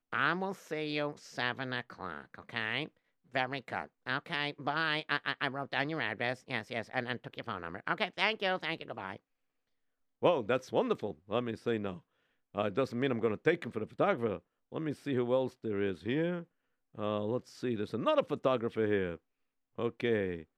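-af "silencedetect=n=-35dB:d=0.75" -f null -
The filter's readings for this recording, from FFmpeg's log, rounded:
silence_start: 9.16
silence_end: 10.23 | silence_duration: 1.07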